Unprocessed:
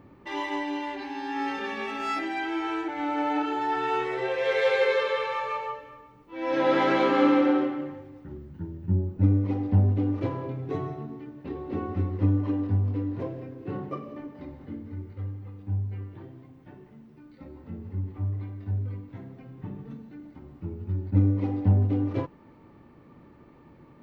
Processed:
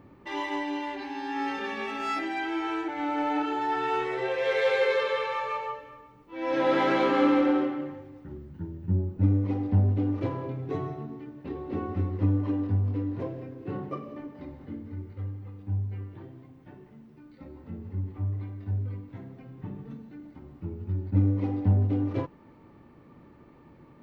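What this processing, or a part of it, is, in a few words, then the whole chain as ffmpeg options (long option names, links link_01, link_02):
parallel distortion: -filter_complex "[0:a]asplit=2[link_01][link_02];[link_02]asoftclip=type=hard:threshold=-23.5dB,volume=-12.5dB[link_03];[link_01][link_03]amix=inputs=2:normalize=0,volume=-2.5dB"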